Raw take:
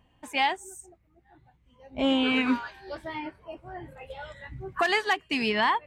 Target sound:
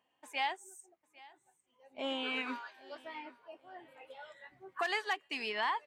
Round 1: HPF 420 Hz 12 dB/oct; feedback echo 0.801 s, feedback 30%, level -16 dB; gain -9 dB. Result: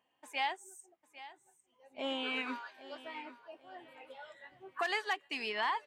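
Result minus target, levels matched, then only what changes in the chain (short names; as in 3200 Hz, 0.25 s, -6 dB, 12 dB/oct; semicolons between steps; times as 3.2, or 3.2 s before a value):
echo-to-direct +6 dB
change: feedback echo 0.801 s, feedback 30%, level -22 dB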